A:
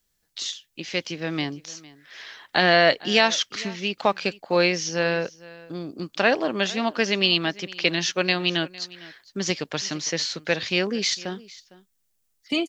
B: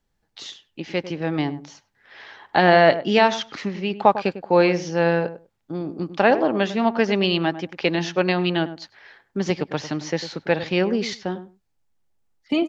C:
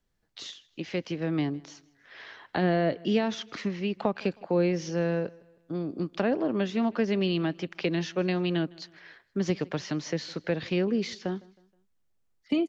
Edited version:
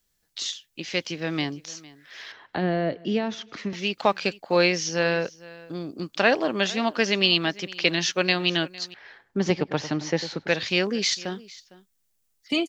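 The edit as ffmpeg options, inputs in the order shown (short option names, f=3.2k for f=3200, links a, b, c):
-filter_complex "[0:a]asplit=3[a][b][c];[a]atrim=end=2.322[d];[2:a]atrim=start=2.318:end=3.732[e];[b]atrim=start=3.728:end=8.942[f];[1:a]atrim=start=8.938:end=10.482[g];[c]atrim=start=10.478[h];[d][e]acrossfade=d=0.004:c1=hsin:c2=hsin[i];[i][f]acrossfade=d=0.004:c1=hsin:c2=hsin[j];[j][g]acrossfade=d=0.004:c1=hsin:c2=hsin[k];[k][h]acrossfade=d=0.004:c1=hsin:c2=hsin"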